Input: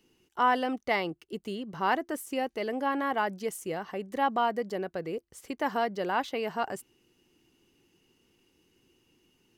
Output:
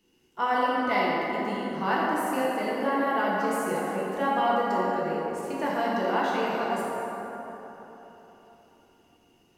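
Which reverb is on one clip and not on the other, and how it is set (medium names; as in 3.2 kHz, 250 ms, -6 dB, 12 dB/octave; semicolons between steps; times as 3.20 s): plate-style reverb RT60 3.8 s, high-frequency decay 0.45×, DRR -6.5 dB; trim -3.5 dB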